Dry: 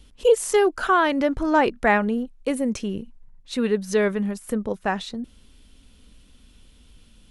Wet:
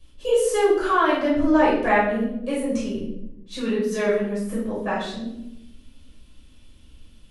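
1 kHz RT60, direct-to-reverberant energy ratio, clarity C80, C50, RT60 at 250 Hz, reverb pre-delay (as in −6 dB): 0.70 s, −8.0 dB, 6.0 dB, 2.0 dB, 1.1 s, 5 ms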